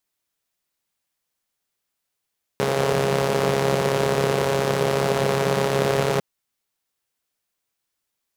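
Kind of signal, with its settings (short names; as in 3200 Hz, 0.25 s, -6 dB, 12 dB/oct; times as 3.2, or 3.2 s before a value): four-cylinder engine model, steady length 3.60 s, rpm 4100, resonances 180/430 Hz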